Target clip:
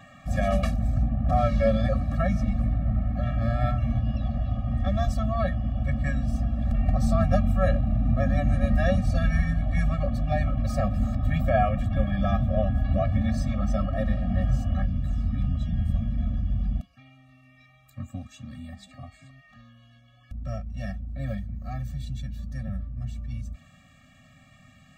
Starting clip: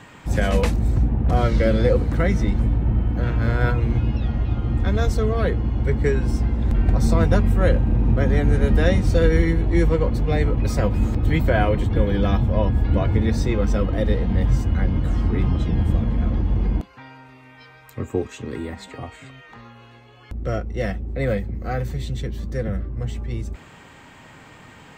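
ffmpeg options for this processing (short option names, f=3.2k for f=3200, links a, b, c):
-af "asetnsamples=n=441:p=0,asendcmd='14.82 equalizer g -5',equalizer=f=760:w=0.48:g=6.5,afftfilt=real='re*eq(mod(floor(b*sr/1024/270),2),0)':imag='im*eq(mod(floor(b*sr/1024/270),2),0)':win_size=1024:overlap=0.75,volume=-5.5dB"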